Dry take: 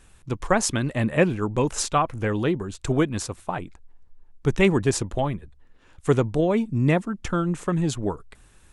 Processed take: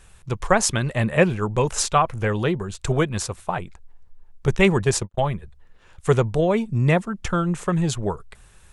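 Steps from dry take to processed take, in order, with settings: 4.47–5.18 s: gate -25 dBFS, range -41 dB; peaking EQ 280 Hz -14 dB 0.37 oct; trim +3.5 dB

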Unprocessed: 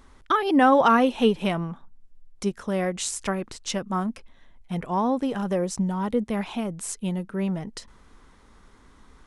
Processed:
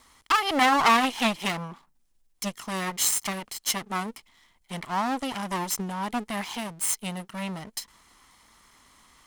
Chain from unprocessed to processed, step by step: comb filter that takes the minimum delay 0.95 ms; tilt EQ +3 dB/octave; loudspeaker Doppler distortion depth 0.19 ms

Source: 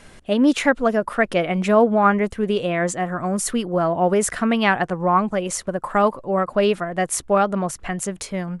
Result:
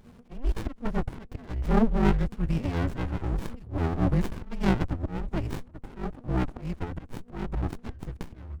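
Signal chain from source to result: slow attack 311 ms; frequency shift -250 Hz; sliding maximum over 65 samples; trim -4 dB

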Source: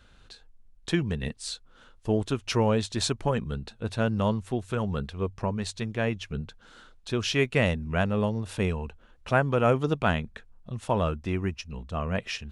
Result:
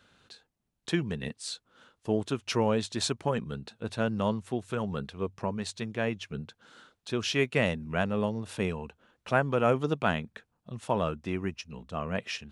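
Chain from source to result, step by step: high-pass 130 Hz 12 dB/octave; trim -2 dB

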